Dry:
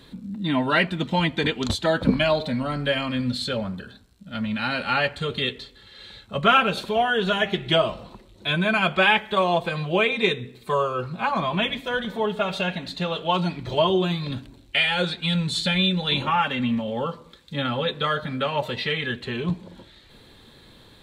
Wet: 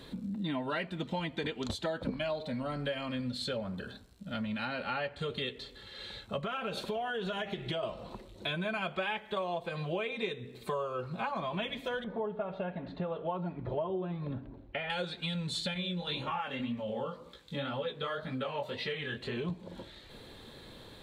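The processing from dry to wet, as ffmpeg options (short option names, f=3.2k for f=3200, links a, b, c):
-filter_complex "[0:a]asettb=1/sr,asplit=3[a][b][c];[a]atrim=end=4.654[d];[b]atrim=start=4.65:end=5.19,asetpts=PTS-STARTPTS,afade=t=in:d=0.004:c=qsin,afade=t=out:st=0.536:d=0.004:c=qsin,lowpass=f=3.7k:p=1[e];[c]atrim=start=5.186[f];[d][e]acrossfade=d=0.004:c1=hsin:c2=qsin[g];[g][f]acrossfade=d=0.004:c1=qsin:c2=hsin,asettb=1/sr,asplit=3[h][i][j];[h]atrim=end=6.444[k];[i]atrim=start=6.44:end=7.83,asetpts=PTS-STARTPTS,afade=t=in:d=0.004:c=qsin,afade=t=out:st=1.386:d=0.004:c=qsin,acompressor=threshold=-22dB:ratio=6:attack=3.2:release=140:knee=1:detection=peak[l];[j]atrim=start=7.826[m];[k][l]acrossfade=d=0.004:c1=hsin:c2=qsin[n];[n][m]acrossfade=d=0.004:c1=qsin:c2=hsin,asettb=1/sr,asplit=3[o][p][q];[o]atrim=end=12.044[r];[p]atrim=start=12.04:end=14.9,asetpts=PTS-STARTPTS,afade=t=in:d=0.004:c=qsin,afade=t=out:st=2.856:d=0.004:c=qsin,lowpass=1.3k[s];[q]atrim=start=14.896[t];[r][s]acrossfade=d=0.004:c1=hsin:c2=qsin[u];[u][t]acrossfade=d=0.004:c1=qsin:c2=hsin,asettb=1/sr,asplit=3[v][w][x];[v]atrim=end=15.744[y];[w]atrim=start=15.74:end=19.37,asetpts=PTS-STARTPTS,afade=t=in:d=0.004:c=qsin,afade=t=out:st=3.626:d=0.004:c=qsin,flanger=delay=15.5:depth=7.7:speed=1.9[z];[x]atrim=start=19.366[aa];[y][z]acrossfade=d=0.004:c1=hsin:c2=qsin[ab];[ab][aa]acrossfade=d=0.004:c1=qsin:c2=hsin,equalizer=f=550:t=o:w=1.2:g=4.5,acompressor=threshold=-33dB:ratio=4,volume=-1.5dB"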